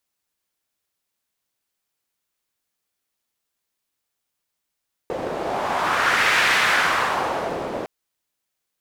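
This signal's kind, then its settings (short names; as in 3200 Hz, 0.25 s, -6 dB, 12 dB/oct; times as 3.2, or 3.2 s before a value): wind-like swept noise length 2.76 s, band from 500 Hz, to 1900 Hz, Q 1.8, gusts 1, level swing 10 dB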